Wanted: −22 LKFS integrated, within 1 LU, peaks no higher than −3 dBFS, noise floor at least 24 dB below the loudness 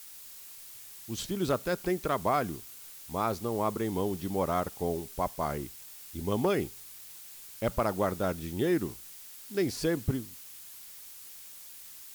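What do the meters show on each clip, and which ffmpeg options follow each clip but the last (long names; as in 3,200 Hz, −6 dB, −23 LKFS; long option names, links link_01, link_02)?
background noise floor −48 dBFS; target noise floor −56 dBFS; integrated loudness −32.0 LKFS; sample peak −17.0 dBFS; target loudness −22.0 LKFS
→ -af "afftdn=noise_reduction=8:noise_floor=-48"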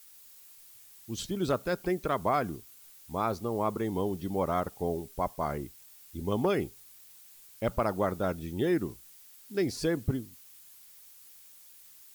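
background noise floor −54 dBFS; target noise floor −56 dBFS
→ -af "afftdn=noise_reduction=6:noise_floor=-54"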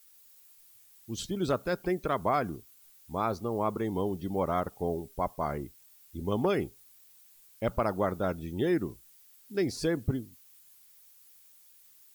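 background noise floor −59 dBFS; integrated loudness −32.0 LKFS; sample peak −17.0 dBFS; target loudness −22.0 LKFS
→ -af "volume=10dB"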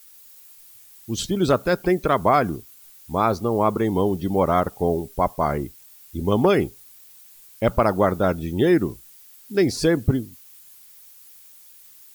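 integrated loudness −22.0 LKFS; sample peak −7.0 dBFS; background noise floor −49 dBFS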